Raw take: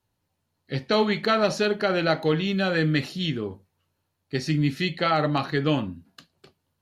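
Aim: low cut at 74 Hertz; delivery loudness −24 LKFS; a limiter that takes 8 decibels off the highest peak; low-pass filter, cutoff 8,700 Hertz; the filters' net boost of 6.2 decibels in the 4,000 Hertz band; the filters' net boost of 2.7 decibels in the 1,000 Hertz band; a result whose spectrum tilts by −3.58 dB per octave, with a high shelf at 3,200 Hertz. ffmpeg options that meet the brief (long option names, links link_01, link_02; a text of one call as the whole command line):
ffmpeg -i in.wav -af "highpass=74,lowpass=8700,equalizer=frequency=1000:width_type=o:gain=3,highshelf=frequency=3200:gain=3.5,equalizer=frequency=4000:width_type=o:gain=5,volume=1.5dB,alimiter=limit=-12.5dB:level=0:latency=1" out.wav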